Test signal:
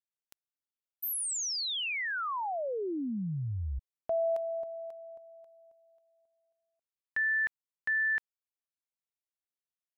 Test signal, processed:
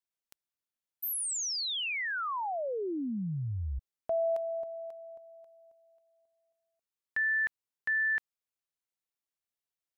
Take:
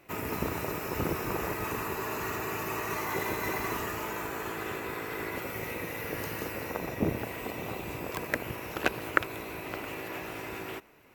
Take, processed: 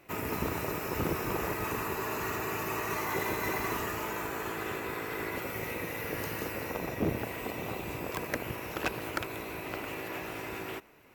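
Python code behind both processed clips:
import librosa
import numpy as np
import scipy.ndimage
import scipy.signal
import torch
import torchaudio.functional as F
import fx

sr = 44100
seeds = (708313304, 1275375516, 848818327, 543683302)

y = np.clip(10.0 ** (23.0 / 20.0) * x, -1.0, 1.0) / 10.0 ** (23.0 / 20.0)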